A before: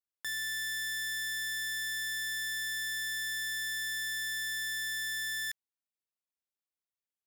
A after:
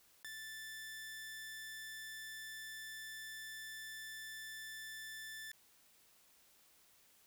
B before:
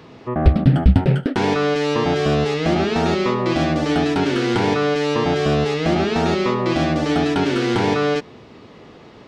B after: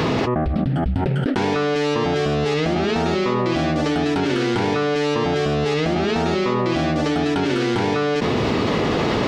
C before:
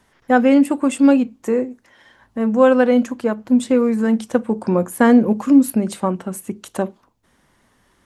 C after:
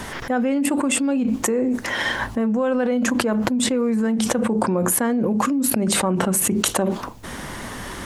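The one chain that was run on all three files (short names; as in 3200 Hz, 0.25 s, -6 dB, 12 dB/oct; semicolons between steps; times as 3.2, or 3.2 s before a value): fast leveller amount 100%; gain -13 dB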